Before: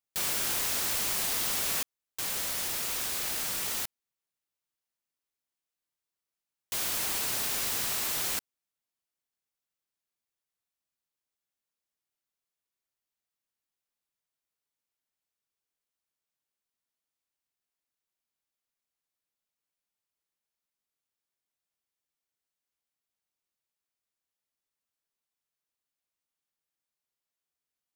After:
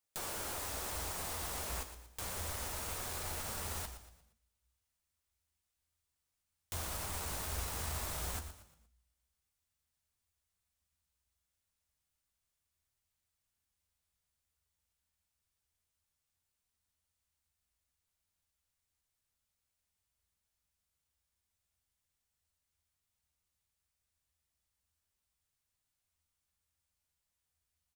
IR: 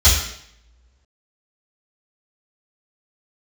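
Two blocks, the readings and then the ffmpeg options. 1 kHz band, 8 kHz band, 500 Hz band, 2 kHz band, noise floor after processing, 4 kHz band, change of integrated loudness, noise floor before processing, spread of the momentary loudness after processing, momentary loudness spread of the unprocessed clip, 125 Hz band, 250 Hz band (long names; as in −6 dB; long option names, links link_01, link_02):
−3.5 dB, −10.5 dB, −3.0 dB, −9.0 dB, below −85 dBFS, −12.0 dB, −10.5 dB, below −85 dBFS, 6 LU, 6 LU, +5.0 dB, −5.0 dB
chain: -filter_complex "[0:a]acrossover=split=330|1300[link_01][link_02][link_03];[link_01]acompressor=threshold=-57dB:ratio=4[link_04];[link_02]acompressor=threshold=-45dB:ratio=4[link_05];[link_03]acompressor=threshold=-46dB:ratio=4[link_06];[link_04][link_05][link_06]amix=inputs=3:normalize=0,asubboost=boost=4:cutoff=150,aeval=exprs='clip(val(0),-1,0.00708)':channel_layout=same,flanger=delay=7.9:depth=5.2:regen=-46:speed=0.31:shape=triangular,equalizer=frequency=8700:width=2.1:gain=4,asplit=5[link_07][link_08][link_09][link_10][link_11];[link_08]adelay=117,afreqshift=-60,volume=-11dB[link_12];[link_09]adelay=234,afreqshift=-120,volume=-19dB[link_13];[link_10]adelay=351,afreqshift=-180,volume=-26.9dB[link_14];[link_11]adelay=468,afreqshift=-240,volume=-34.9dB[link_15];[link_07][link_12][link_13][link_14][link_15]amix=inputs=5:normalize=0,asplit=2[link_16][link_17];[1:a]atrim=start_sample=2205[link_18];[link_17][link_18]afir=irnorm=-1:irlink=0,volume=-35.5dB[link_19];[link_16][link_19]amix=inputs=2:normalize=0,volume=6dB"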